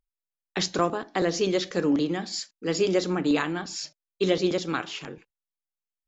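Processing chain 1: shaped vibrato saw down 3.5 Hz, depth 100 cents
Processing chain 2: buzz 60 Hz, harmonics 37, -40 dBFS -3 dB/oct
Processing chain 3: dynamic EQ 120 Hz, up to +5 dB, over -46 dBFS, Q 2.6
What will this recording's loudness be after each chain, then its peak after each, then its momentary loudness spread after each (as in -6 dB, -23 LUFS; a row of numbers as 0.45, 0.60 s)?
-27.0, -27.0, -26.5 LUFS; -9.5, -9.0, -9.5 dBFS; 11, 16, 11 LU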